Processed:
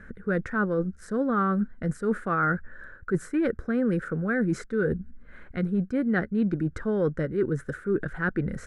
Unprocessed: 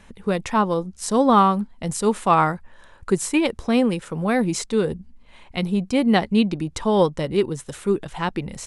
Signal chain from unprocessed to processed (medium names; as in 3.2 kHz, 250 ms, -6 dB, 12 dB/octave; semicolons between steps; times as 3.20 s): FFT filter 490 Hz 0 dB, 950 Hz -17 dB, 1.5 kHz +11 dB, 2.7 kHz -19 dB; reverse; compression 5:1, threshold -26 dBFS, peak gain reduction 12 dB; reverse; trim +3 dB